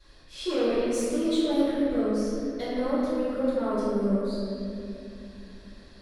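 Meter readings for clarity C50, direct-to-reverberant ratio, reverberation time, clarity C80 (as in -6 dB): -4.5 dB, -16.5 dB, 2.8 s, -2.0 dB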